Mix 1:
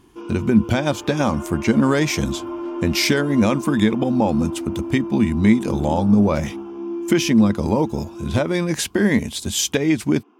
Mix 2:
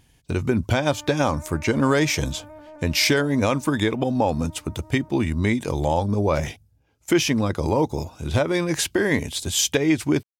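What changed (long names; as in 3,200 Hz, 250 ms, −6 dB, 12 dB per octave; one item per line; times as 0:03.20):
first sound: muted
master: add parametric band 210 Hz −13 dB 0.36 octaves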